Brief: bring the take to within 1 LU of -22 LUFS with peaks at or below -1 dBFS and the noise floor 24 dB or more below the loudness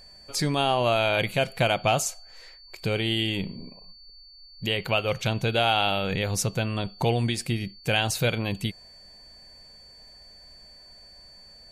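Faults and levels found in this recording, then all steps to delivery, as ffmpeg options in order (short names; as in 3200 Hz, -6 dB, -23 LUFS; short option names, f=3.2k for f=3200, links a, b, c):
steady tone 4500 Hz; tone level -48 dBFS; loudness -25.5 LUFS; peak -10.0 dBFS; loudness target -22.0 LUFS
-> -af "bandreject=f=4.5k:w=30"
-af "volume=3.5dB"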